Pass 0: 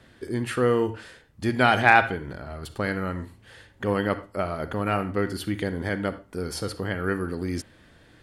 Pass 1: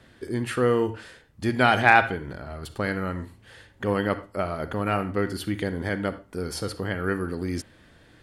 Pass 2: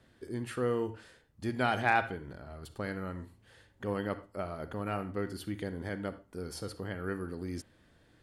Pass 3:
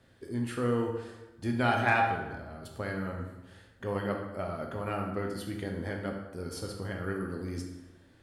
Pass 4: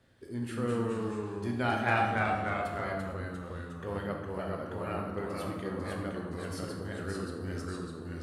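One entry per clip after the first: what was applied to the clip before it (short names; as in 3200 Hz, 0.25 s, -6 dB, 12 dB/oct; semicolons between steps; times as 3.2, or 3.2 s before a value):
nothing audible
bell 2200 Hz -3 dB 1.8 oct; gain -9 dB
plate-style reverb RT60 1.1 s, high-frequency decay 0.7×, DRR 1.5 dB
echoes that change speed 0.182 s, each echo -1 st, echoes 3; gain -3.5 dB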